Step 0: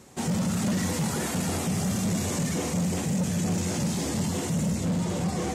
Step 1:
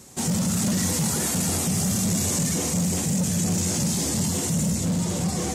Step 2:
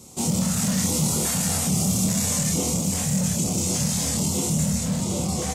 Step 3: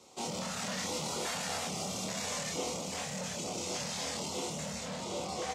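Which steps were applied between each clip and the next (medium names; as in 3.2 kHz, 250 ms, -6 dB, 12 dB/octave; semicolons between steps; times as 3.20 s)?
tone controls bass +3 dB, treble +10 dB
LFO notch square 1.2 Hz 340–1700 Hz; doubling 26 ms -4 dB
three-band isolator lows -19 dB, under 380 Hz, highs -20 dB, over 5.1 kHz; trim -3.5 dB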